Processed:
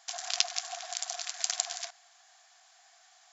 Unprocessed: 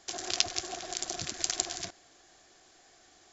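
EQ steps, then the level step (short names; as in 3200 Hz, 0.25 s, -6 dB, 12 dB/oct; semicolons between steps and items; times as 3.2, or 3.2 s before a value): brick-wall FIR high-pass 640 Hz; 0.0 dB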